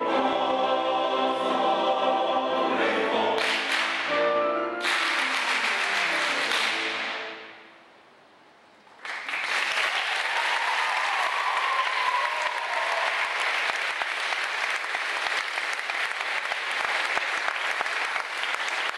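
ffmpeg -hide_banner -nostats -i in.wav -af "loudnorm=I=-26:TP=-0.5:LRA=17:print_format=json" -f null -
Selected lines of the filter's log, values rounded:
"input_i" : "-25.3",
"input_tp" : "-10.6",
"input_lra" : "2.8",
"input_thresh" : "-35.6",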